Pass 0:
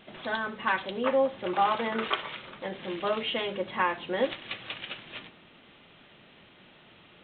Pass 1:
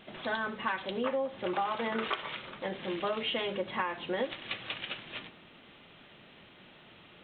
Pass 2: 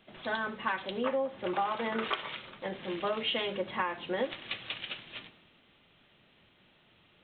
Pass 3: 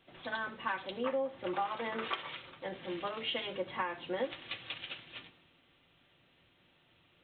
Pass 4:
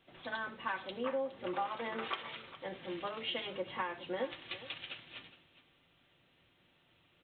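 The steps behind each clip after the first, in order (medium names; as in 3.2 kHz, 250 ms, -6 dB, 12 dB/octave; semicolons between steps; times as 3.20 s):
compression 10:1, threshold -28 dBFS, peak gain reduction 9 dB
three bands expanded up and down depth 40%
comb of notches 210 Hz; trim -2.5 dB
delay 414 ms -16.5 dB; trim -2 dB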